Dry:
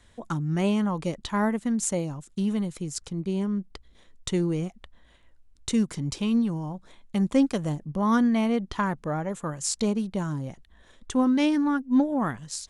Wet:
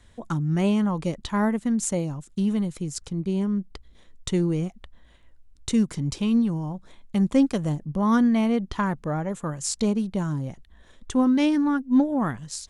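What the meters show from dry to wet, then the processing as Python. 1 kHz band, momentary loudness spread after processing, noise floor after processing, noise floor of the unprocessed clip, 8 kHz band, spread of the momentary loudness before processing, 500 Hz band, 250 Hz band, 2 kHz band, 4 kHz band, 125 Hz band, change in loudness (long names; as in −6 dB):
+0.5 dB, 10 LU, −54 dBFS, −58 dBFS, 0.0 dB, 11 LU, +1.0 dB, +2.5 dB, 0.0 dB, 0.0 dB, +3.0 dB, +2.0 dB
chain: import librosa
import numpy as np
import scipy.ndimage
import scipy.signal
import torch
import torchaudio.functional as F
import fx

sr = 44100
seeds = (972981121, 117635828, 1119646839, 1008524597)

y = fx.low_shelf(x, sr, hz=240.0, db=4.5)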